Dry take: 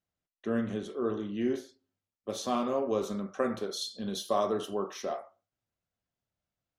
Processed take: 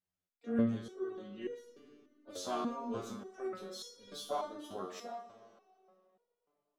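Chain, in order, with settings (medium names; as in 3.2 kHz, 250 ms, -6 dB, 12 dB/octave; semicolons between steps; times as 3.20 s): harmony voices +4 st -10 dB; algorithmic reverb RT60 3 s, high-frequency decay 0.8×, pre-delay 35 ms, DRR 13 dB; resonator arpeggio 3.4 Hz 91–480 Hz; trim +3 dB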